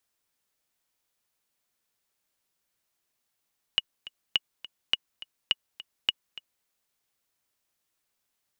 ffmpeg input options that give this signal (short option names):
-f lavfi -i "aevalsrc='pow(10,(-9-17.5*gte(mod(t,2*60/208),60/208))/20)*sin(2*PI*2900*mod(t,60/208))*exp(-6.91*mod(t,60/208)/0.03)':d=2.88:s=44100"